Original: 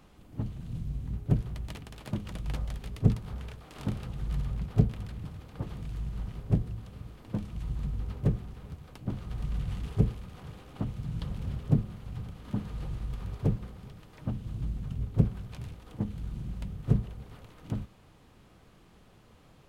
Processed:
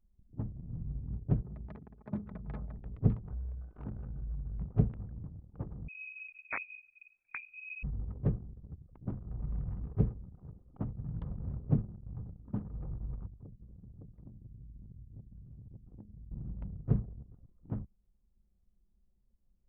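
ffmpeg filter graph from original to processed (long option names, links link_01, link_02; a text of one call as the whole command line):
ffmpeg -i in.wav -filter_complex "[0:a]asettb=1/sr,asplit=3[link_01][link_02][link_03];[link_01]atrim=end=1.424[link_04];[link_02]atrim=start=1.42:end=2.78,asetpts=PTS-STARTPTS,afade=type=in:duration=0.004:curve=qsin,afade=type=out:start_time=1.356:duration=0.004:curve=qsin,highpass=frequency=60:width=0.5412,highpass=frequency=60:width=1.3066,equalizer=frequency=2900:width_type=o:width=0.27:gain=-10,aecho=1:1:4.7:0.51,atrim=end_sample=59976[link_05];[link_03]atrim=start=2.776[link_06];[link_04][link_05]acrossfade=duration=0.004:curve1=hsin:curve2=qsin[link_07];[link_07][link_06]acrossfade=duration=0.004:curve1=qsin:curve2=hsin,asettb=1/sr,asplit=3[link_08][link_09][link_10];[link_08]atrim=end=3.304[link_11];[link_09]atrim=start=3.3:end=4.59,asetpts=PTS-STARTPTS,afade=type=in:duration=0.004:curve=qsin,afade=type=out:start_time=1.286:duration=0.004:curve=qsin,equalizer=frequency=61:width=5:gain=13.5,aeval=exprs='val(0)+0.00158*sin(2*PI*1500*n/s)':channel_layout=same,acompressor=threshold=-33dB:ratio=3:attack=3.2:release=140:knee=1:detection=peak[link_12];[link_10]atrim=start=4.586[link_13];[link_11][link_12]acrossfade=duration=0.004:curve1=hsin:curve2=qsin[link_14];[link_14][link_13]acrossfade=duration=0.004:curve1=qsin:curve2=hsin,asettb=1/sr,asplit=3[link_15][link_16][link_17];[link_15]atrim=end=5.884[link_18];[link_16]atrim=start=5.88:end=7.83,asetpts=PTS-STARTPTS,afade=type=in:duration=0.004:curve=qsin,afade=type=out:start_time=1.946:duration=0.004:curve=qsin,aeval=exprs='(mod(10.6*val(0)+1,2)-1)/10.6':channel_layout=same,lowpass=frequency=2200:width_type=q:width=0.5098,lowpass=frequency=2200:width_type=q:width=0.6013,lowpass=frequency=2200:width_type=q:width=0.9,lowpass=frequency=2200:width_type=q:width=2.563,afreqshift=-2600[link_19];[link_17]atrim=start=7.826[link_20];[link_18][link_19]acrossfade=duration=0.004:curve1=hsin:curve2=qsin[link_21];[link_21][link_20]acrossfade=duration=0.004:curve1=qsin:curve2=hsin,asettb=1/sr,asplit=3[link_22][link_23][link_24];[link_22]atrim=end=13.264[link_25];[link_23]atrim=start=13.26:end=16.31,asetpts=PTS-STARTPTS,afade=type=in:duration=0.004:curve=qsin,afade=type=out:start_time=3.046:duration=0.004:curve=qsin,aecho=1:1:561:0.316,atrim=end_sample=134505,acompressor=threshold=-41dB:ratio=16:attack=3.2:release=140:knee=1:detection=peak[link_26];[link_24]atrim=start=16.306[link_27];[link_25][link_26]acrossfade=duration=0.004:curve1=hsin:curve2=qsin[link_28];[link_28][link_27]acrossfade=duration=0.004:curve1=qsin:curve2=hsin,lowpass=1700,anlmdn=0.158,volume=-4dB" out.wav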